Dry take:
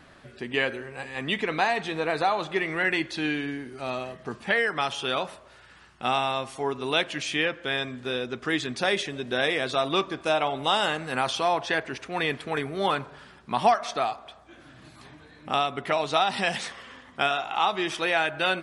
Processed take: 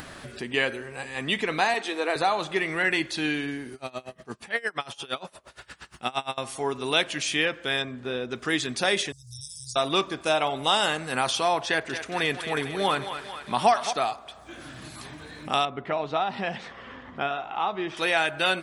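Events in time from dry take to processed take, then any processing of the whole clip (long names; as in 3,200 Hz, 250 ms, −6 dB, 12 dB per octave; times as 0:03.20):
0:01.74–0:02.16: Butterworth high-pass 230 Hz 48 dB per octave
0:03.74–0:06.38: tremolo with a sine in dB 8.6 Hz, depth 26 dB
0:07.82–0:08.31: low-pass filter 1,700 Hz 6 dB per octave
0:09.12–0:09.76: Chebyshev band-stop filter 120–5,000 Hz, order 5
0:11.67–0:13.93: feedback echo with a high-pass in the loop 224 ms, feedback 62%, level −9 dB
0:15.65–0:17.97: head-to-tape spacing loss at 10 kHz 34 dB
whole clip: high-shelf EQ 6,400 Hz +11.5 dB; upward compression, threshold −33 dBFS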